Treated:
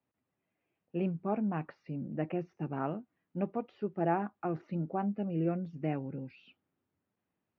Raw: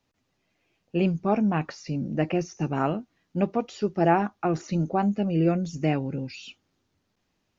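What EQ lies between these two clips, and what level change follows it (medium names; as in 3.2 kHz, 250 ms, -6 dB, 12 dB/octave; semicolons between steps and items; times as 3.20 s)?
high-pass 100 Hz; low-pass 2.5 kHz 12 dB/octave; distance through air 210 m; -8.5 dB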